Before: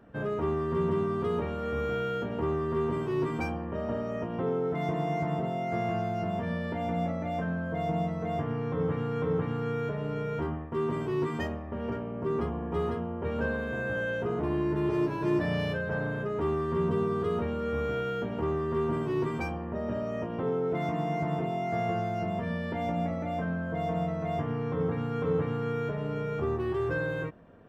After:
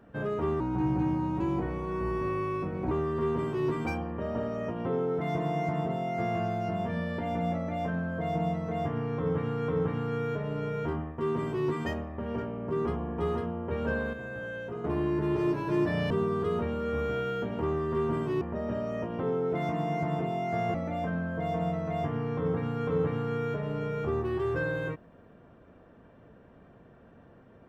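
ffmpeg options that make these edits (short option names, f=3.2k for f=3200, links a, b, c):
-filter_complex "[0:a]asplit=8[a][b][c][d][e][f][g][h];[a]atrim=end=0.604[i];[b]atrim=start=0.6:end=2.45,asetpts=PTS-STARTPTS,asetrate=35280,aresample=44100,atrim=end_sample=101981,asetpts=PTS-STARTPTS[j];[c]atrim=start=2.446:end=13.672[k];[d]atrim=start=13.668:end=14.382,asetpts=PTS-STARTPTS,volume=-6.5dB[l];[e]atrim=start=14.378:end=15.642[m];[f]atrim=start=16.898:end=19.212[n];[g]atrim=start=19.608:end=21.942[o];[h]atrim=start=23.088[p];[i][j]acrossfade=d=0.004:c1=hsin:c2=hsin[q];[q][k]acrossfade=d=0.004:c1=hsin:c2=hsin[r];[r][l]acrossfade=d=0.004:c1=hsin:c2=hsin[s];[s][m]acrossfade=d=0.004:c1=hsin:c2=hsin[t];[t][n]acrossfade=d=0.004:c1=hsin:c2=hsin[u];[u][o]acrossfade=d=0.004:c1=hsin:c2=hsin[v];[v][p]acrossfade=d=0.004:c1=hsin:c2=hsin"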